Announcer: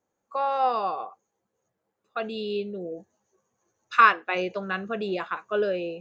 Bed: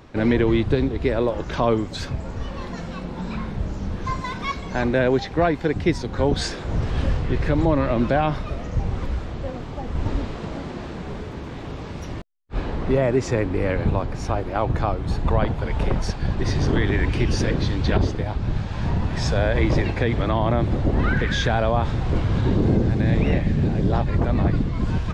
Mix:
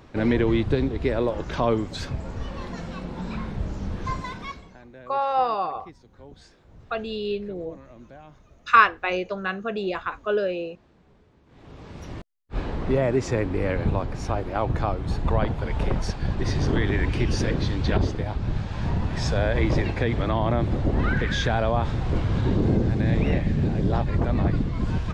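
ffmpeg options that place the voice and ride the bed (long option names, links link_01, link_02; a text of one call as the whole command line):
ffmpeg -i stem1.wav -i stem2.wav -filter_complex "[0:a]adelay=4750,volume=1.5dB[link_01];[1:a]volume=21dB,afade=type=out:start_time=4.12:duration=0.66:silence=0.0668344,afade=type=in:start_time=11.46:duration=0.89:silence=0.0668344[link_02];[link_01][link_02]amix=inputs=2:normalize=0" out.wav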